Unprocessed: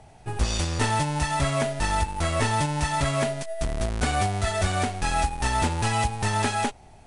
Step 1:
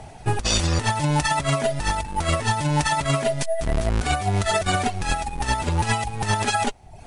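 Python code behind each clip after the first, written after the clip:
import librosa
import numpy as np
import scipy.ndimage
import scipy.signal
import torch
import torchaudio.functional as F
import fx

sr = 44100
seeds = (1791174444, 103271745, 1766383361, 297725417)

y = fx.dereverb_blind(x, sr, rt60_s=0.56)
y = fx.over_compress(y, sr, threshold_db=-28.0, ratio=-0.5)
y = y * librosa.db_to_amplitude(7.0)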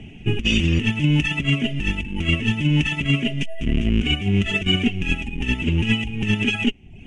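y = fx.curve_eq(x, sr, hz=(130.0, 220.0, 400.0, 570.0, 900.0, 1500.0, 2900.0, 4200.0, 6400.0, 9700.0), db=(0, 10, 1, -14, -20, -13, 12, -22, -11, -22))
y = y * librosa.db_to_amplitude(1.5)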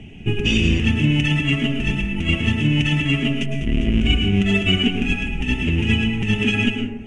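y = fx.rev_plate(x, sr, seeds[0], rt60_s=1.0, hf_ratio=0.35, predelay_ms=95, drr_db=2.5)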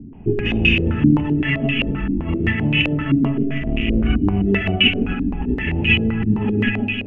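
y = fx.echo_feedback(x, sr, ms=153, feedback_pct=55, wet_db=-7)
y = fx.filter_held_lowpass(y, sr, hz=7.7, low_hz=280.0, high_hz=2600.0)
y = y * librosa.db_to_amplitude(-2.5)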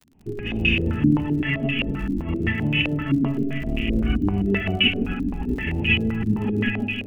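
y = fx.fade_in_head(x, sr, length_s=0.74)
y = fx.dmg_crackle(y, sr, seeds[1], per_s=58.0, level_db=-33.0)
y = y * librosa.db_to_amplitude(-4.0)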